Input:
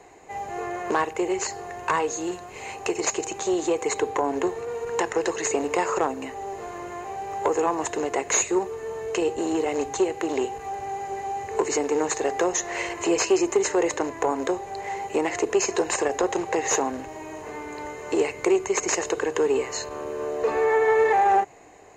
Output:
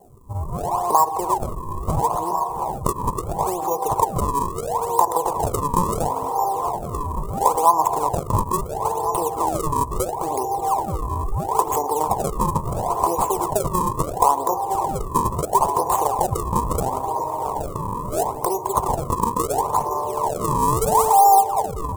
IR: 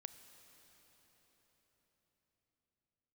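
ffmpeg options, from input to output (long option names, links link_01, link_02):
-filter_complex "[0:a]asplit=2[link_01][link_02];[1:a]atrim=start_sample=2205,asetrate=34839,aresample=44100[link_03];[link_02][link_03]afir=irnorm=-1:irlink=0,volume=12dB[link_04];[link_01][link_04]amix=inputs=2:normalize=0,acompressor=threshold=-16dB:ratio=2,asplit=2[link_05][link_06];[link_06]adelay=1399,volume=-8dB,highshelf=frequency=4000:gain=-31.5[link_07];[link_05][link_07]amix=inputs=2:normalize=0,acrusher=samples=35:mix=1:aa=0.000001:lfo=1:lforange=56:lforate=0.74,afftdn=noise_reduction=13:noise_floor=-32,firequalizer=gain_entry='entry(150,0);entry(270,-12);entry(1000,12);entry(1500,-22);entry(4300,-13);entry(7800,7)':delay=0.05:min_phase=1,volume=-2.5dB"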